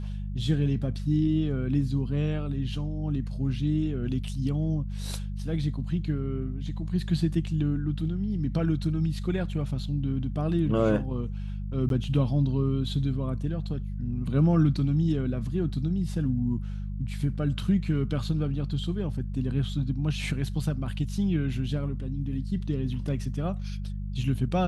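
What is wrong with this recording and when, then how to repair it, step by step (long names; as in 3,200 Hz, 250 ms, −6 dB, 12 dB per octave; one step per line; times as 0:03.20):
mains hum 50 Hz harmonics 4 −33 dBFS
0:11.89–0:11.90: drop-out 12 ms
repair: hum removal 50 Hz, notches 4
repair the gap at 0:11.89, 12 ms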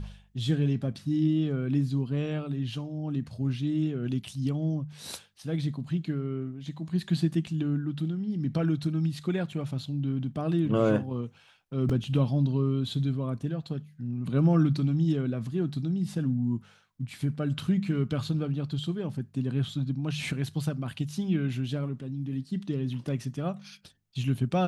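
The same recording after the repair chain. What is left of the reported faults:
none of them is left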